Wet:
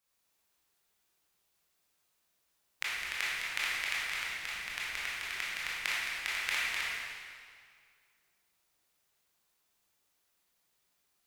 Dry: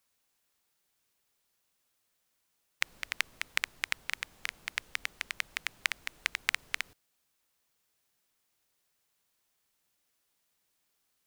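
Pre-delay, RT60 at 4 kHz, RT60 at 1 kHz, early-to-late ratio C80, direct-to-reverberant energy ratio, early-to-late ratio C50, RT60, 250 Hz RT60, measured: 19 ms, 1.8 s, 2.1 s, −1.0 dB, −8.5 dB, −3.5 dB, 2.0 s, 2.1 s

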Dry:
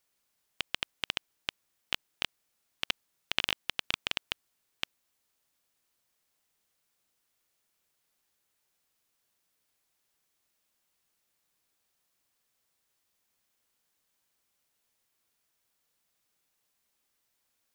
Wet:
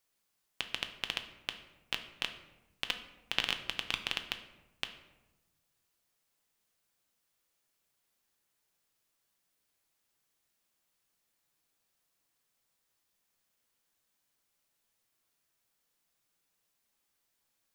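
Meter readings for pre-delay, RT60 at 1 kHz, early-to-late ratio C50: 6 ms, 0.95 s, 10.5 dB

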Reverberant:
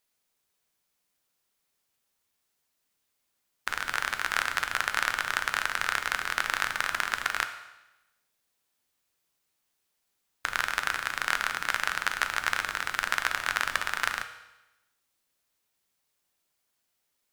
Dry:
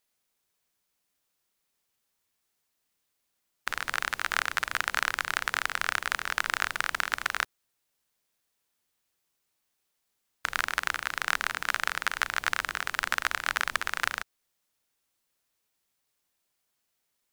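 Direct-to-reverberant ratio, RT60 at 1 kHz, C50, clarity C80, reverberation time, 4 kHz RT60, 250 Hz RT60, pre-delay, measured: 7.5 dB, 1.0 s, 10.5 dB, 12.5 dB, 1.0 s, 0.95 s, 1.0 s, 7 ms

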